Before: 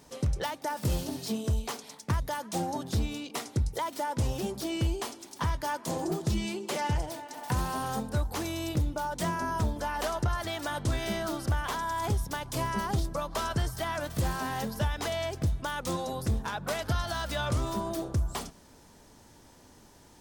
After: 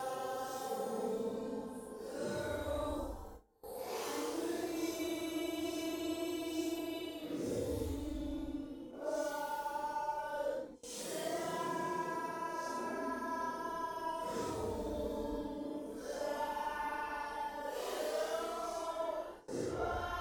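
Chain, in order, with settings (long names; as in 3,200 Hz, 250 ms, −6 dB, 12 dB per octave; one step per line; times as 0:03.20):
low shelf with overshoot 200 Hz −12.5 dB, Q 1.5
in parallel at −7.5 dB: hard clipping −33 dBFS, distortion −9 dB
on the sum: parametric band 480 Hz +11 dB 0.39 octaves
reversed playback
downward compressor 16 to 1, threshold −37 dBFS, peak gain reduction 18 dB
reversed playback
extreme stretch with random phases 8.3×, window 0.05 s, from 0:07.87
noise gate with hold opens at −41 dBFS
level +1 dB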